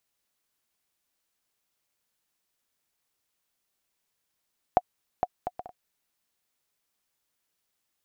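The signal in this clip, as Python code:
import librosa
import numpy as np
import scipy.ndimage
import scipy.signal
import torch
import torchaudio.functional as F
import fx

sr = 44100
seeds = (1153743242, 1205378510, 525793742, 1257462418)

y = fx.bouncing_ball(sr, first_gap_s=0.46, ratio=0.52, hz=726.0, decay_ms=43.0, level_db=-7.5)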